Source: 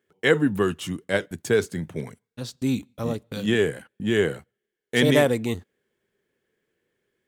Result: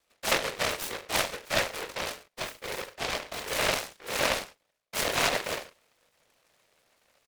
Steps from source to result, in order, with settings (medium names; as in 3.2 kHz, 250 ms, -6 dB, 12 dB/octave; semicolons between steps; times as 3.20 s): reverse; compression 6:1, threshold -33 dBFS, peak gain reduction 18.5 dB; reverse; whisper effect; reverse bouncing-ball echo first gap 20 ms, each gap 1.15×, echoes 5; mistuned SSB +140 Hz 370–3200 Hz; delay time shaken by noise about 1.5 kHz, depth 0.31 ms; trim +7.5 dB